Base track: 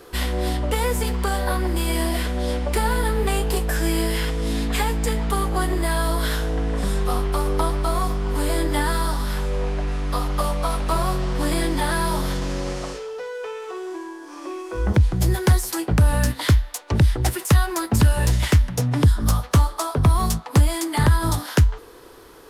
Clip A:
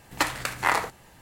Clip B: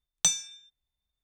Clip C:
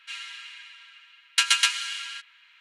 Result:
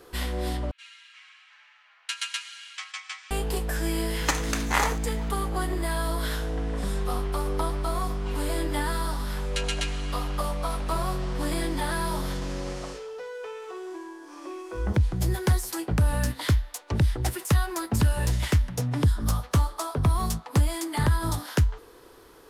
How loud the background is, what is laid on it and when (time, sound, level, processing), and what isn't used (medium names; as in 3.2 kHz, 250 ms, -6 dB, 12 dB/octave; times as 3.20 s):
base track -6 dB
0.71 s: replace with C -11 dB + ever faster or slower copies 331 ms, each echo -4 st, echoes 3, each echo -6 dB
4.08 s: add A -2 dB + peaking EQ 6.3 kHz +11.5 dB 0.29 oct
8.18 s: add C -11 dB
not used: B